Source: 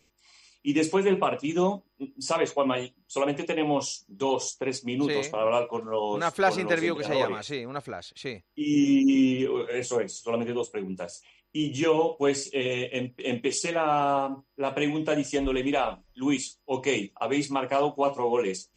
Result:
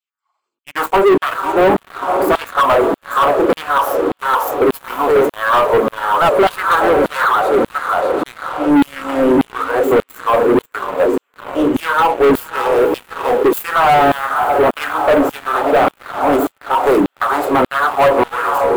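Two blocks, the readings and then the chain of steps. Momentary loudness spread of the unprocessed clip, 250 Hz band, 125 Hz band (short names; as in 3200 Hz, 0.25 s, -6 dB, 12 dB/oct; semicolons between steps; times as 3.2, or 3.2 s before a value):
11 LU, +8.5 dB, +6.0 dB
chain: self-modulated delay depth 0.27 ms; resonant high shelf 1700 Hz -8.5 dB, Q 3; diffused feedback echo 0.515 s, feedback 65%, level -11 dB; LFO high-pass saw down 1.7 Hz 250–3600 Hz; sample leveller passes 5; bell 5500 Hz -13.5 dB 1.1 oct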